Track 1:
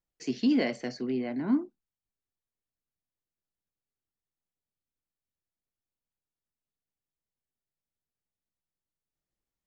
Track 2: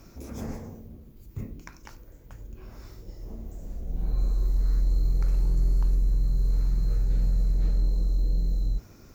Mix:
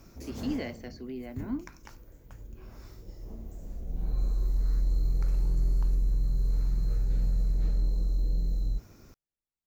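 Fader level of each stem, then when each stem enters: -8.0 dB, -3.0 dB; 0.00 s, 0.00 s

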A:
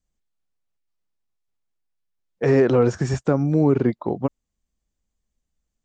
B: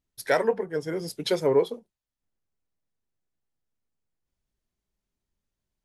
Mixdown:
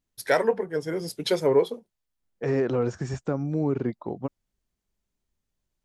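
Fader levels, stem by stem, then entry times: -8.0 dB, +1.0 dB; 0.00 s, 0.00 s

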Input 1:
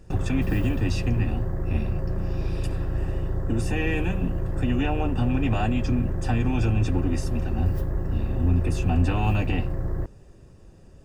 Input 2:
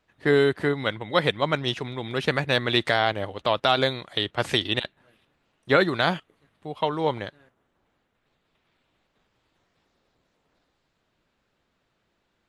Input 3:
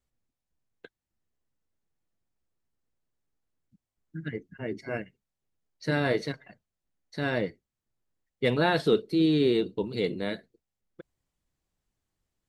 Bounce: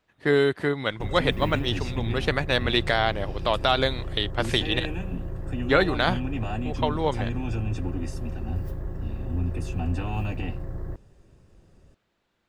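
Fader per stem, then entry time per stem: -6.0 dB, -1.0 dB, mute; 0.90 s, 0.00 s, mute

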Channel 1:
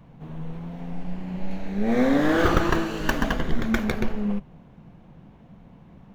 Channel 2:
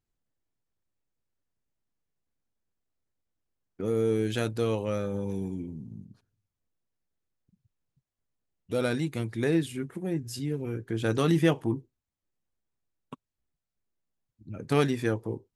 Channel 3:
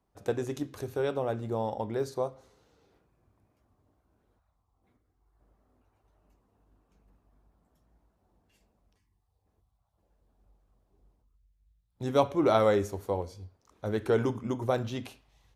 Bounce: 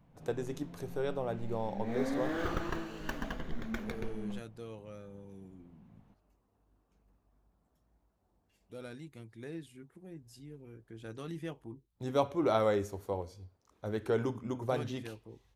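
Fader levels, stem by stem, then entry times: -14.5 dB, -18.0 dB, -5.0 dB; 0.00 s, 0.00 s, 0.00 s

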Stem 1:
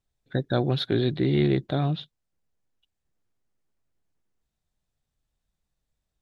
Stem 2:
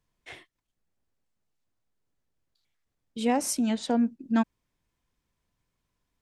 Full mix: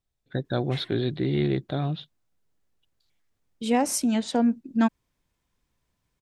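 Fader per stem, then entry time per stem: -2.5 dB, +2.5 dB; 0.00 s, 0.45 s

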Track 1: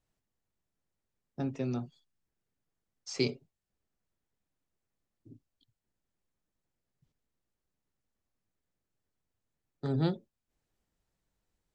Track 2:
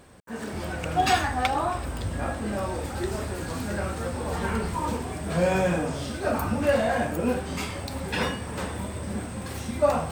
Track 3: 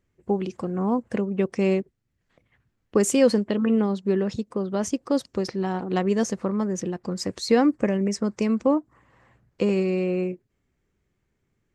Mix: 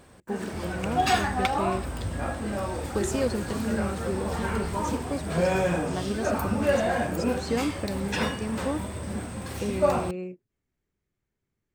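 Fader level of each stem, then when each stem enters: -11.5 dB, -1.0 dB, -9.0 dB; 0.00 s, 0.00 s, 0.00 s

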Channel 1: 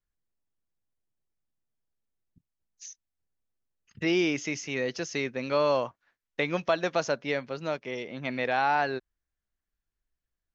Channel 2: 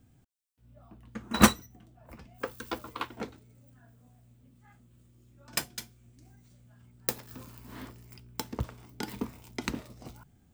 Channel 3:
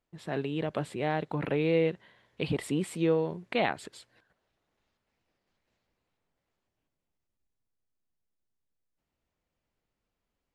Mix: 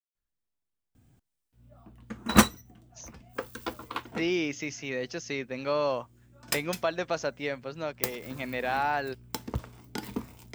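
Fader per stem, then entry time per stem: -3.0 dB, +0.5 dB, mute; 0.15 s, 0.95 s, mute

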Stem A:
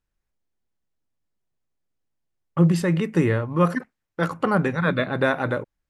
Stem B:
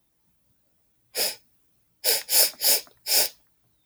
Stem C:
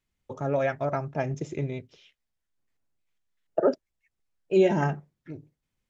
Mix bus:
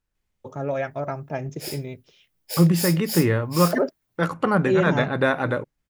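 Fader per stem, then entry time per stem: +0.5 dB, -9.5 dB, -0.5 dB; 0.00 s, 0.45 s, 0.15 s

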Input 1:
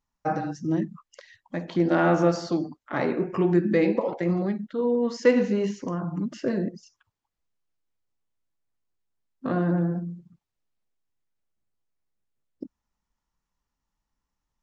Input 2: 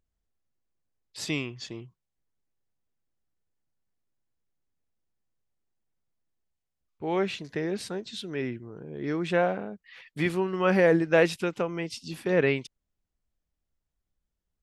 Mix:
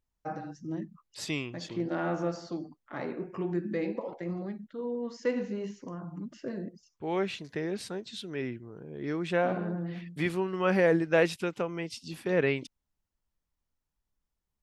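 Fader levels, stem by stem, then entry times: -10.5 dB, -3.0 dB; 0.00 s, 0.00 s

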